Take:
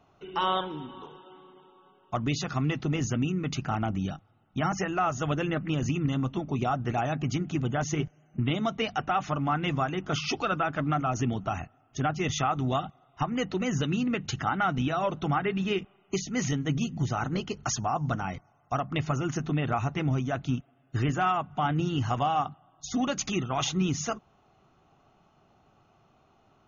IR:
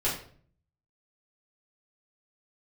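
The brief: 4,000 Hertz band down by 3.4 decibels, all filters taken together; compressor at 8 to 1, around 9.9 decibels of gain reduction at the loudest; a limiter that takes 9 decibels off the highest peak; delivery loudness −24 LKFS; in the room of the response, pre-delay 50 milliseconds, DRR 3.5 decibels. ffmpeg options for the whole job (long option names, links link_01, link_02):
-filter_complex "[0:a]equalizer=frequency=4000:width_type=o:gain=-5,acompressor=threshold=-33dB:ratio=8,alimiter=level_in=8dB:limit=-24dB:level=0:latency=1,volume=-8dB,asplit=2[link_01][link_02];[1:a]atrim=start_sample=2205,adelay=50[link_03];[link_02][link_03]afir=irnorm=-1:irlink=0,volume=-12.5dB[link_04];[link_01][link_04]amix=inputs=2:normalize=0,volume=15.5dB"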